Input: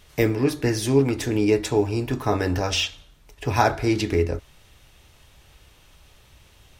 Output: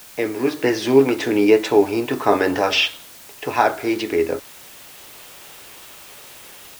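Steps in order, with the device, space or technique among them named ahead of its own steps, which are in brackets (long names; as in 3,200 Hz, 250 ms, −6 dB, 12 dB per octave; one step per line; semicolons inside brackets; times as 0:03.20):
dictaphone (band-pass filter 310–3,700 Hz; automatic gain control gain up to 13.5 dB; tape wow and flutter; white noise bed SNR 22 dB)
level −1 dB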